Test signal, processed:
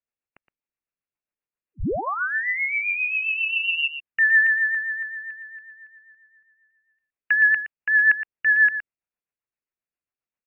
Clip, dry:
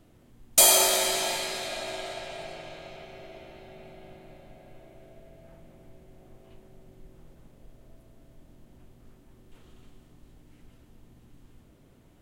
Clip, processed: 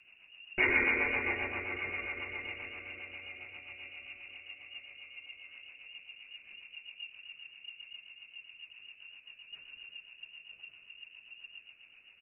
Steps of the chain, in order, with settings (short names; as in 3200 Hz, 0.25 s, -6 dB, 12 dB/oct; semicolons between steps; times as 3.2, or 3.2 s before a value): outdoor echo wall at 20 m, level -10 dB; inverted band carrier 2800 Hz; rotary speaker horn 7.5 Hz